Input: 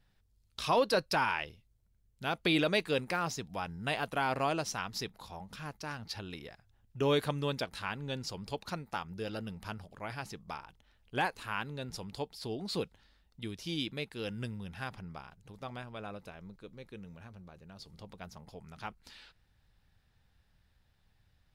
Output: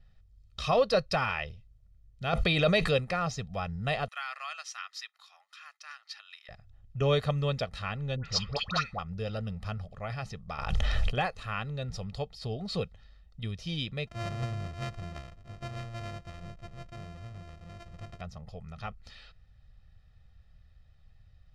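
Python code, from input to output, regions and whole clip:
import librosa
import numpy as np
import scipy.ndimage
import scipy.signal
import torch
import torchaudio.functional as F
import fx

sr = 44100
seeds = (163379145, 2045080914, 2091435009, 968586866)

y = fx.chain(x, sr, fx.high_shelf(hz=11000.0, db=5.5),
    fx.env_flatten(amount_pct=70), at=(2.33, 2.97))
y = fx.chain(y, sr, fx.highpass(hz=1300.0, slope=24),
    fx.peak_eq(hz=4300.0, db=-3.0, octaves=2.8), at=(4.08, 6.49))
y = fx.chain(y, sr, fx.lowpass(hz=10000.0, slope=12),
    fx.band_shelf(hz=2600.0, db=12.5, octaves=2.9),
    fx.dispersion(late='highs', ms=89.0, hz=1100.0), at=(8.16, 8.99))
y = fx.chain(y, sr, fx.bass_treble(bass_db=-4, treble_db=2),
    fx.env_flatten(amount_pct=100), at=(10.58, 11.18))
y = fx.chain(y, sr, fx.sample_sort(block=128),
    fx.high_shelf(hz=9800.0, db=-4.5), at=(14.07, 18.21))
y = scipy.signal.sosfilt(scipy.signal.butter(2, 5900.0, 'lowpass', fs=sr, output='sos'), y)
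y = fx.low_shelf(y, sr, hz=150.0, db=10.0)
y = y + 0.71 * np.pad(y, (int(1.6 * sr / 1000.0), 0))[:len(y)]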